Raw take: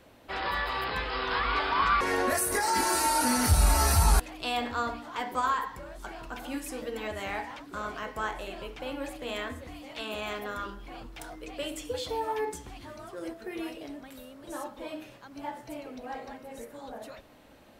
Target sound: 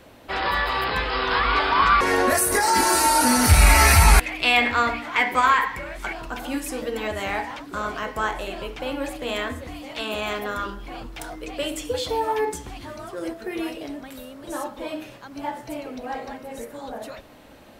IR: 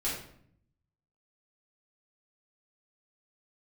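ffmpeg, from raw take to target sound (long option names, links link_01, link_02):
-filter_complex "[0:a]asettb=1/sr,asplit=3[link_01][link_02][link_03];[link_01]atrim=end=3.494[link_04];[link_02]atrim=start=3.49:end=6.13,asetpts=PTS-STARTPTS,afade=type=in:duration=0.004:curve=qsin,afade=type=out:start_time=2.636:duration=0.004:curve=qsin,equalizer=frequency=2200:width_type=o:width=0.67:gain=15[link_05];[link_03]atrim=start=6.126[link_06];[link_04][link_05]acrossfade=duration=0.004:curve1=hsin:curve2=qsin[link_07];[link_07][link_06]acrossfade=duration=0.004:curve1=qsin:curve2=hsin,volume=7.5dB"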